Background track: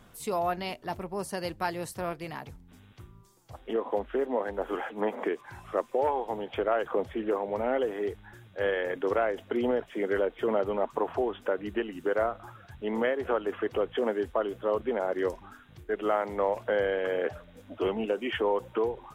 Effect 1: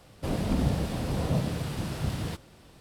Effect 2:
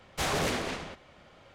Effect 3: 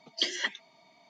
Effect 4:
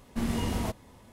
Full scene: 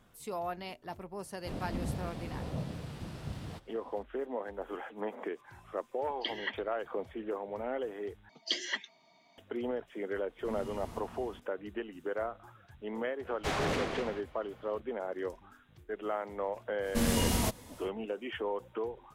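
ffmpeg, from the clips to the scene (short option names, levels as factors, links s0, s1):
-filter_complex "[3:a]asplit=2[s0][s1];[4:a]asplit=2[s2][s3];[0:a]volume=0.398[s4];[1:a]highshelf=f=7900:g=-7.5[s5];[s0]lowpass=f=3200:w=0.5412,lowpass=f=3200:w=1.3066[s6];[s2]aecho=1:1:82|289|501:0.422|0.335|0.473[s7];[2:a]highshelf=f=5100:g=-11.5[s8];[s3]highshelf=f=3200:g=10.5[s9];[s4]asplit=2[s10][s11];[s10]atrim=end=8.294[s12];[s1]atrim=end=1.09,asetpts=PTS-STARTPTS,volume=0.631[s13];[s11]atrim=start=9.376[s14];[s5]atrim=end=2.8,asetpts=PTS-STARTPTS,volume=0.316,afade=t=in:d=0.004:c=hsin,afade=t=out:st=2.796:d=0.004:c=hsin,adelay=1230[s15];[s6]atrim=end=1.09,asetpts=PTS-STARTPTS,volume=0.562,afade=t=in:d=0.004:c=hsin,afade=t=out:st=1.086:d=0.004:c=hsin,adelay=6030[s16];[s7]atrim=end=1.12,asetpts=PTS-STARTPTS,volume=0.15,afade=t=in:d=0.004:c=hsin,afade=t=out:st=1.116:d=0.004:c=hsin,adelay=10280[s17];[s8]atrim=end=1.54,asetpts=PTS-STARTPTS,volume=0.794,afade=t=in:d=0.004:c=hsin,afade=t=out:st=1.536:d=0.004:c=hsin,adelay=13260[s18];[s9]atrim=end=1.12,asetpts=PTS-STARTPTS,afade=t=in:d=0.1,afade=t=out:st=1.02:d=0.1,adelay=16790[s19];[s12][s13]acrossfade=d=0.004:c1=hsin:c2=hsin[s20];[s20][s14]acrossfade=d=0.004:c1=hsin:c2=hsin[s21];[s21][s15][s16][s17][s18][s19]amix=inputs=6:normalize=0"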